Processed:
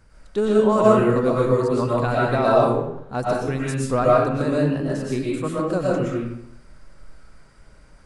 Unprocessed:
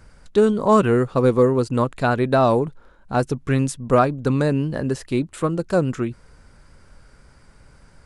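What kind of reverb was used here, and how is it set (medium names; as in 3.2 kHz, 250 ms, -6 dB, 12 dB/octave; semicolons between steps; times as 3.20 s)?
algorithmic reverb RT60 0.78 s, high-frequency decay 0.7×, pre-delay 80 ms, DRR -5.5 dB; trim -6.5 dB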